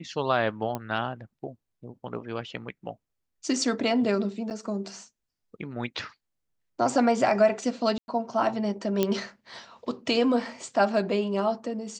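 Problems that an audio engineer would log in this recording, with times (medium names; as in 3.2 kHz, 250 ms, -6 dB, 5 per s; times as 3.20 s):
0.75 s: pop -17 dBFS
4.50–4.51 s: dropout 8.4 ms
7.98–8.08 s: dropout 101 ms
9.03 s: pop -10 dBFS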